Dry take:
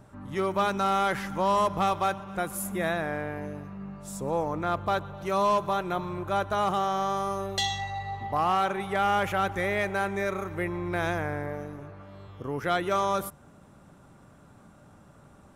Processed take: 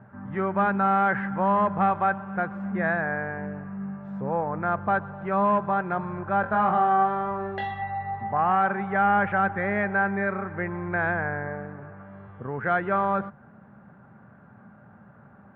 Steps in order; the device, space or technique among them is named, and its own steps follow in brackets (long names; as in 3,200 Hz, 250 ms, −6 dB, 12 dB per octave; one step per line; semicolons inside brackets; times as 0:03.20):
bass cabinet (loudspeaker in its box 90–2,100 Hz, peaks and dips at 120 Hz +5 dB, 210 Hz +9 dB, 300 Hz −6 dB, 790 Hz +4 dB, 1,600 Hz +9 dB)
0:06.41–0:07.82: flutter between parallel walls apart 4 metres, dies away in 0.27 s